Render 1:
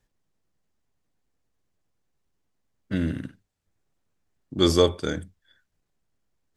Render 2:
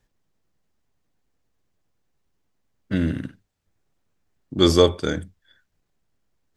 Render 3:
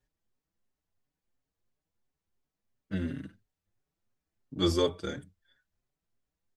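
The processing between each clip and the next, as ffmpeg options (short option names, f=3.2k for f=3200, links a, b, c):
-af "equalizer=f=10k:w=0.94:g=-3,volume=3.5dB"
-filter_complex "[0:a]asplit=2[a][b];[b]adelay=5.1,afreqshift=2.9[c];[a][c]amix=inputs=2:normalize=1,volume=-7.5dB"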